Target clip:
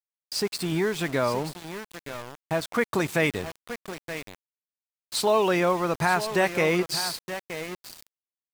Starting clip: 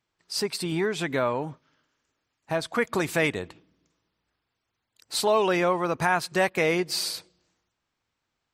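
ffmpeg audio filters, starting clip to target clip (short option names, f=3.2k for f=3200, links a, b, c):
-af "equalizer=f=96:t=o:w=2.7:g=3,aecho=1:1:924:0.282,aeval=exprs='val(0)*gte(abs(val(0)),0.02)':c=same"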